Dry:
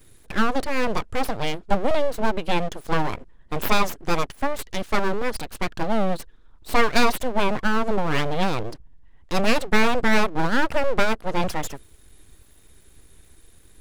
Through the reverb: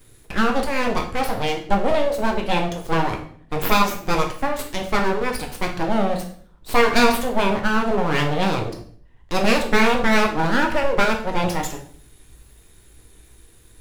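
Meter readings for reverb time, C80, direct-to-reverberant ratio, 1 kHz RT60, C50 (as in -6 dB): 0.55 s, 13.0 dB, 2.0 dB, 0.50 s, 8.0 dB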